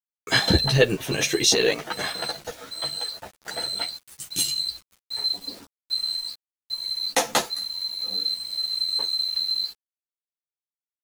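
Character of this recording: tremolo saw up 5.2 Hz, depth 40%; a quantiser's noise floor 8-bit, dither none; a shimmering, thickened sound

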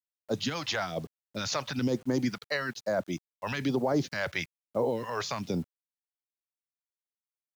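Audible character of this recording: phasing stages 2, 1.1 Hz, lowest notch 230–2900 Hz; a quantiser's noise floor 10-bit, dither none

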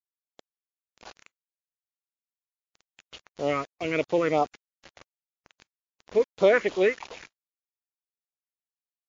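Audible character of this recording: phasing stages 4, 3 Hz, lowest notch 720–1900 Hz; a quantiser's noise floor 8-bit, dither none; MP3

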